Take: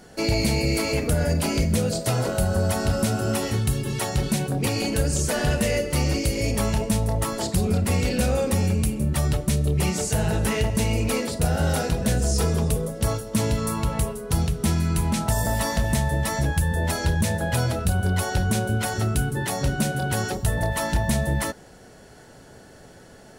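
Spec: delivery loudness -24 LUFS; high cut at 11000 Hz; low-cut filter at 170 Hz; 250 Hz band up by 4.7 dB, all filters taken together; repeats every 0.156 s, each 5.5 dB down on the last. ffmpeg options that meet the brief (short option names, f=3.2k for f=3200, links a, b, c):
-af "highpass=170,lowpass=11k,equalizer=f=250:t=o:g=8,aecho=1:1:156|312|468|624|780|936|1092:0.531|0.281|0.149|0.079|0.0419|0.0222|0.0118,volume=-1.5dB"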